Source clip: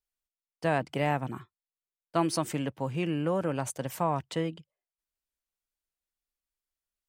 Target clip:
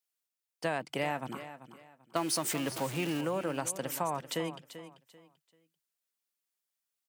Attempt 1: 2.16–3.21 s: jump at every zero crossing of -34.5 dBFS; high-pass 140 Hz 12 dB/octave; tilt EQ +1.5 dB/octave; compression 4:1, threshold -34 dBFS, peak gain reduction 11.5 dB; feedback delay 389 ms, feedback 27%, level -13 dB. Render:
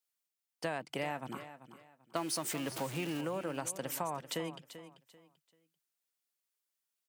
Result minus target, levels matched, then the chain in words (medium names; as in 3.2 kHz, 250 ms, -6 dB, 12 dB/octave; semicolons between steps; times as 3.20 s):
compression: peak gain reduction +4.5 dB
2.16–3.21 s: jump at every zero crossing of -34.5 dBFS; high-pass 140 Hz 12 dB/octave; tilt EQ +1.5 dB/octave; compression 4:1, threshold -28 dBFS, peak gain reduction 7 dB; feedback delay 389 ms, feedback 27%, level -13 dB